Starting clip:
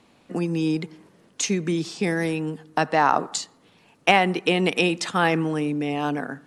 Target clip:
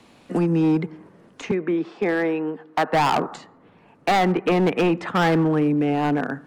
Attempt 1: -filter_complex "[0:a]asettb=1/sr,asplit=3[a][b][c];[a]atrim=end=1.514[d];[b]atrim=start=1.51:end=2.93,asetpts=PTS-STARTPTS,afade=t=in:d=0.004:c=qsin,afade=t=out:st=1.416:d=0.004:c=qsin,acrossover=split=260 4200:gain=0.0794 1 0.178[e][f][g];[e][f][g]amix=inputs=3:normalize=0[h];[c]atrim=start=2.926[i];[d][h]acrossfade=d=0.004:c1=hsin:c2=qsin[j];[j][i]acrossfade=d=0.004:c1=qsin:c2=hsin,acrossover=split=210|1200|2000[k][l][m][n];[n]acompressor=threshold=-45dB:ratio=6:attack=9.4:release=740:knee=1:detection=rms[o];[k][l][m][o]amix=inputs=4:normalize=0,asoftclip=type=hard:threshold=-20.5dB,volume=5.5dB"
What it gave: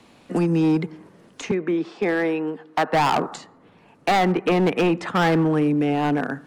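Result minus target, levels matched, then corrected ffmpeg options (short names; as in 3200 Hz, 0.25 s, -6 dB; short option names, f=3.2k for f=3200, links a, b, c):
compressor: peak gain reduction -6.5 dB
-filter_complex "[0:a]asettb=1/sr,asplit=3[a][b][c];[a]atrim=end=1.514[d];[b]atrim=start=1.51:end=2.93,asetpts=PTS-STARTPTS,afade=t=in:d=0.004:c=qsin,afade=t=out:st=1.416:d=0.004:c=qsin,acrossover=split=260 4200:gain=0.0794 1 0.178[e][f][g];[e][f][g]amix=inputs=3:normalize=0[h];[c]atrim=start=2.926[i];[d][h]acrossfade=d=0.004:c1=hsin:c2=qsin[j];[j][i]acrossfade=d=0.004:c1=qsin:c2=hsin,acrossover=split=210|1200|2000[k][l][m][n];[n]acompressor=threshold=-53dB:ratio=6:attack=9.4:release=740:knee=1:detection=rms[o];[k][l][m][o]amix=inputs=4:normalize=0,asoftclip=type=hard:threshold=-20.5dB,volume=5.5dB"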